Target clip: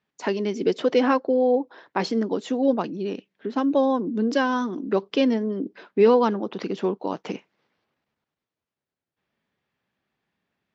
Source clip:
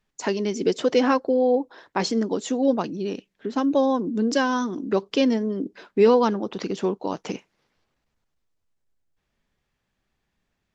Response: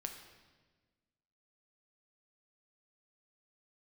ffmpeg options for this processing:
-af "highpass=140,lowpass=4000"

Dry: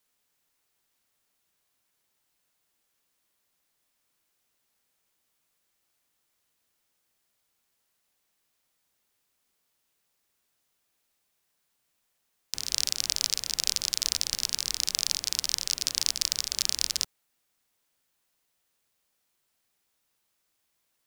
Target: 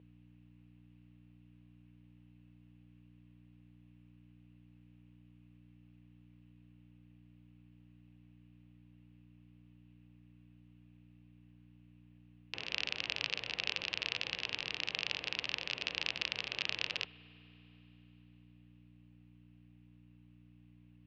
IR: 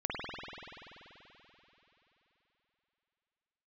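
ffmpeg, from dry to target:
-filter_complex "[0:a]aeval=exprs='val(0)+0.00282*(sin(2*PI*60*n/s)+sin(2*PI*2*60*n/s)/2+sin(2*PI*3*60*n/s)/3+sin(2*PI*4*60*n/s)/4+sin(2*PI*5*60*n/s)/5)':channel_layout=same,highpass=140,equalizer=frequency=220:width_type=q:width=4:gain=-9,equalizer=frequency=490:width_type=q:width=4:gain=5,equalizer=frequency=1400:width_type=q:width=4:gain=-4,equalizer=frequency=2700:width_type=q:width=4:gain=9,lowpass=frequency=3000:width=0.5412,lowpass=frequency=3000:width=1.3066,asplit=2[link_01][link_02];[1:a]atrim=start_sample=2205[link_03];[link_02][link_03]afir=irnorm=-1:irlink=0,volume=-24.5dB[link_04];[link_01][link_04]amix=inputs=2:normalize=0"

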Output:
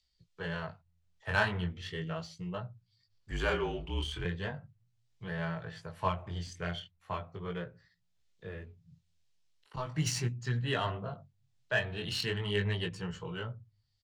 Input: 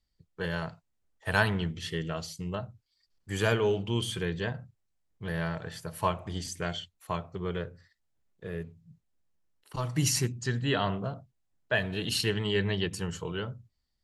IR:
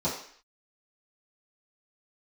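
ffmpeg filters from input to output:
-filter_complex "[0:a]equalizer=frequency=290:width_type=o:width=1.3:gain=-6.5,acrossover=split=110|3300[link_01][link_02][link_03];[link_01]aecho=1:1:176|352|528:0.0794|0.0357|0.0161[link_04];[link_03]acompressor=mode=upward:threshold=-54dB:ratio=2.5[link_05];[link_04][link_02][link_05]amix=inputs=3:normalize=0,flanger=delay=16.5:depth=7.2:speed=0.38,adynamicsmooth=sensitivity=3.5:basefreq=4000,asettb=1/sr,asplit=3[link_06][link_07][link_08];[link_06]atrim=end=3.314[link_09];[link_07]atrim=start=3.31:end=4.25,asetpts=PTS-STARTPTS,afade=type=in:duration=0.004:curve=qsin,afade=type=out:start_time=0.936:duration=0.004:curve=qsin,afreqshift=-46[link_10];[link_08]atrim=start=4.246[link_11];[link_09][link_10]acrossfade=duration=0.004:curve1=hsin:curve2=qsin[link_12];[link_12][link_11]acrossfade=duration=0.004:curve1=qsin:curve2=hsin,volume=1dB"

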